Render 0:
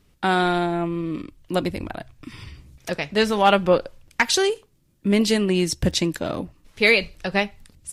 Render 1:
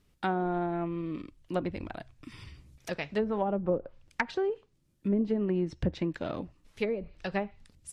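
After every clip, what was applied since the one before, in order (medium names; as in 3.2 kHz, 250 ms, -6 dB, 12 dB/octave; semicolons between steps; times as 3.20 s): low-pass that closes with the level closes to 470 Hz, closed at -14 dBFS; trim -8 dB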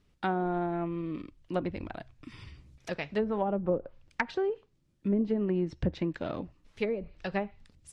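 distance through air 51 m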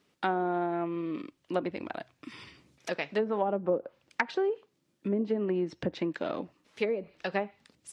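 high-pass 260 Hz 12 dB/octave; in parallel at -2.5 dB: compression, threshold -37 dBFS, peak gain reduction 13 dB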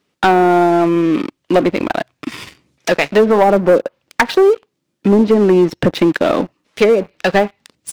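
waveshaping leveller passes 3; trim +9 dB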